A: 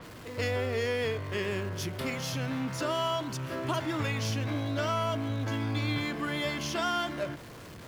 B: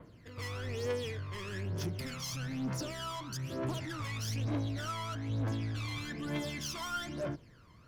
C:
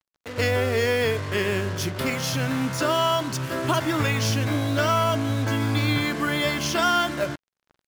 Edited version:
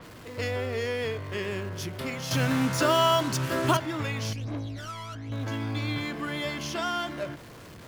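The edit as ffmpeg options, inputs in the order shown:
ffmpeg -i take0.wav -i take1.wav -i take2.wav -filter_complex "[0:a]asplit=3[link_01][link_02][link_03];[link_01]atrim=end=2.312[link_04];[2:a]atrim=start=2.308:end=3.772[link_05];[link_02]atrim=start=3.768:end=4.332[link_06];[1:a]atrim=start=4.328:end=5.322[link_07];[link_03]atrim=start=5.318[link_08];[link_04][link_05]acrossfade=duration=0.004:curve1=hsin:curve2=hsin[link_09];[link_09][link_06]acrossfade=duration=0.004:curve1=hsin:curve2=hsin[link_10];[link_10][link_07]acrossfade=duration=0.004:curve1=hsin:curve2=hsin[link_11];[link_11][link_08]acrossfade=duration=0.004:curve1=hsin:curve2=hsin" out.wav

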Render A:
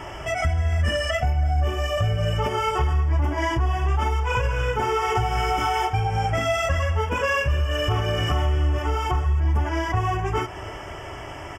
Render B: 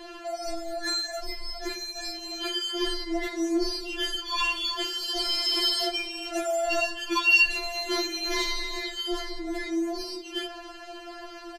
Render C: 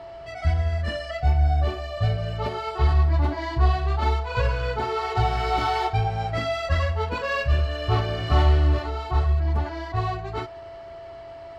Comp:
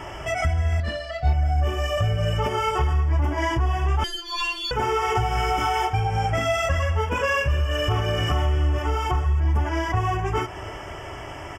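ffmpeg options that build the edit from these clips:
ffmpeg -i take0.wav -i take1.wav -i take2.wav -filter_complex "[0:a]asplit=3[link_01][link_02][link_03];[link_01]atrim=end=0.802[link_04];[2:a]atrim=start=0.798:end=1.332[link_05];[link_02]atrim=start=1.328:end=4.042[link_06];[1:a]atrim=start=4.038:end=4.712[link_07];[link_03]atrim=start=4.708[link_08];[link_04][link_05]acrossfade=duration=0.004:curve1=hsin:curve2=hsin[link_09];[link_09][link_06]acrossfade=duration=0.004:curve1=hsin:curve2=hsin[link_10];[link_10][link_07]acrossfade=duration=0.004:curve1=hsin:curve2=hsin[link_11];[link_11][link_08]acrossfade=duration=0.004:curve1=hsin:curve2=hsin" out.wav

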